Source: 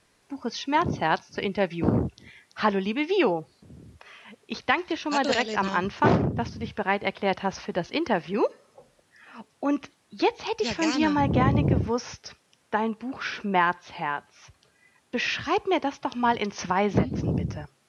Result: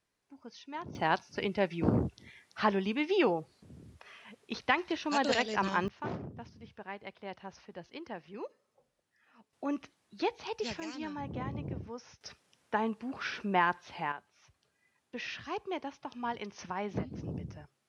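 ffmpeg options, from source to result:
ffmpeg -i in.wav -af "asetnsamples=nb_out_samples=441:pad=0,asendcmd='0.95 volume volume -5dB;5.88 volume volume -18dB;9.53 volume volume -9dB;10.8 volume volume -17dB;12.21 volume volume -5.5dB;14.12 volume volume -13dB',volume=-18dB" out.wav

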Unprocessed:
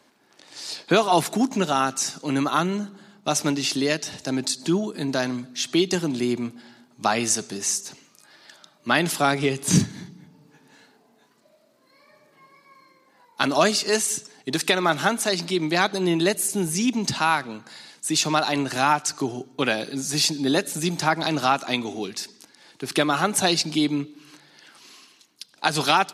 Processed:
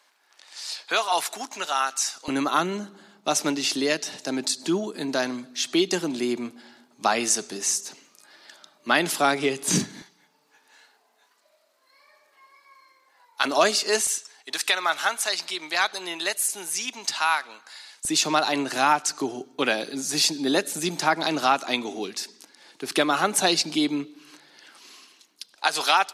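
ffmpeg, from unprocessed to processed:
ffmpeg -i in.wav -af "asetnsamples=nb_out_samples=441:pad=0,asendcmd='2.28 highpass f 260;10.02 highpass f 770;13.45 highpass f 350;14.07 highpass f 870;18.05 highpass f 250;25.55 highpass f 600',highpass=890" out.wav

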